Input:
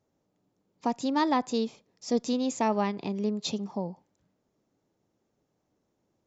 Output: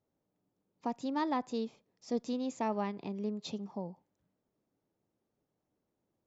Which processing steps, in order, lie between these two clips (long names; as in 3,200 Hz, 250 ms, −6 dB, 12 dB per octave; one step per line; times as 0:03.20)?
high-shelf EQ 4,700 Hz −9 dB
level −7 dB